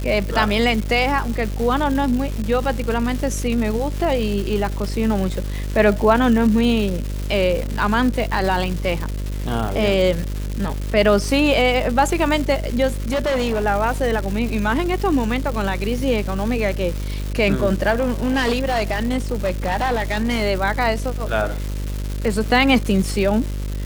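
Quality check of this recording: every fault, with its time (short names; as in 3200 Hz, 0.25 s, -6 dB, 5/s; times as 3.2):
buzz 50 Hz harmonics 12 -25 dBFS
crackle 440/s -25 dBFS
12.91–13.64 clipped -17 dBFS
17.91–20.43 clipped -15.5 dBFS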